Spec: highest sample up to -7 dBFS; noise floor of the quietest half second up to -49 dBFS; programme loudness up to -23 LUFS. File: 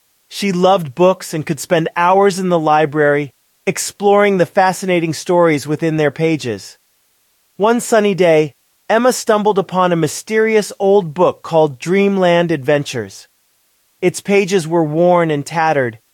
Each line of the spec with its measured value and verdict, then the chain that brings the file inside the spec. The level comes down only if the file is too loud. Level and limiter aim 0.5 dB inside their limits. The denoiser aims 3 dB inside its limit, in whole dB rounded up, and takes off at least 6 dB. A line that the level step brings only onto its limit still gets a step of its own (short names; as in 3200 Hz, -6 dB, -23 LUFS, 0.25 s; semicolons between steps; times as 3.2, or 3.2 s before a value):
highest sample -2.0 dBFS: fail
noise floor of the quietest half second -59 dBFS: OK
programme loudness -14.5 LUFS: fail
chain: gain -9 dB